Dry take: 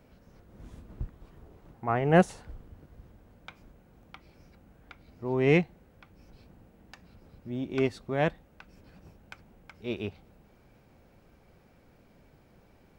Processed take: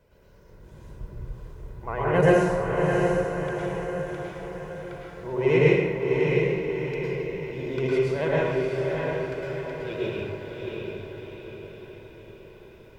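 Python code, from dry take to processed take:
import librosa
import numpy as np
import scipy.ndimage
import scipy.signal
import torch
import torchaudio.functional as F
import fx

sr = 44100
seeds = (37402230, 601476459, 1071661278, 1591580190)

y = fx.hum_notches(x, sr, base_hz=60, count=2)
y = y + 0.64 * np.pad(y, (int(2.0 * sr / 1000.0), 0))[:len(y)]
y = fx.vibrato(y, sr, rate_hz=14.0, depth_cents=67.0)
y = fx.echo_diffused(y, sr, ms=673, feedback_pct=54, wet_db=-3)
y = fx.rev_plate(y, sr, seeds[0], rt60_s=1.4, hf_ratio=0.65, predelay_ms=95, drr_db=-6.5)
y = y * librosa.db_to_amplitude(-4.5)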